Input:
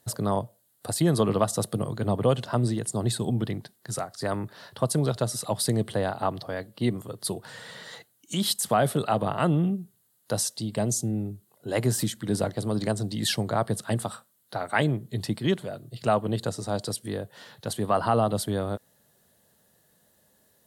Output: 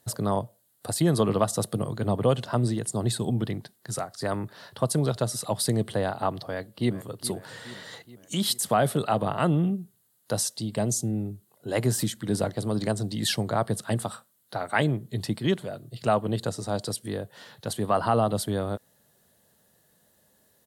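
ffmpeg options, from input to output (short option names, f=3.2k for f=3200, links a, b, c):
-filter_complex "[0:a]asplit=2[a][b];[b]afade=t=in:st=6.36:d=0.01,afade=t=out:st=7.15:d=0.01,aecho=0:1:420|840|1260|1680|2100|2520:0.177828|0.106697|0.0640181|0.0384108|0.0230465|0.0138279[c];[a][c]amix=inputs=2:normalize=0"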